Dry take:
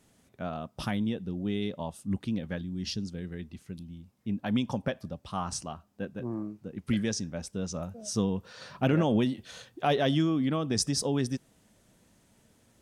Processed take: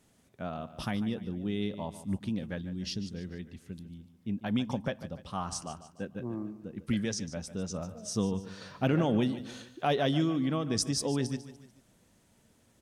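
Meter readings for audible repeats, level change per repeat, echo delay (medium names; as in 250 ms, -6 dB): 3, -7.0 dB, 147 ms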